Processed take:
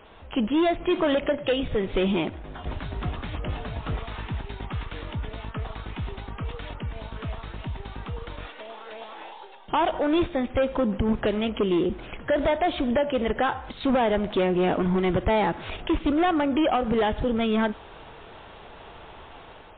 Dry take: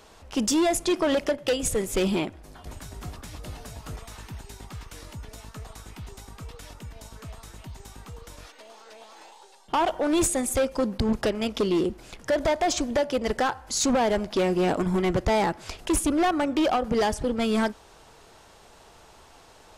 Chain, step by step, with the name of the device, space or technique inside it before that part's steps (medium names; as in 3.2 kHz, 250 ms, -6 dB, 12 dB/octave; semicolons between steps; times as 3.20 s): low-bitrate web radio (level rider gain up to 5.5 dB; peak limiter -20.5 dBFS, peak gain reduction 7.5 dB; trim +3 dB; MP3 24 kbps 8 kHz)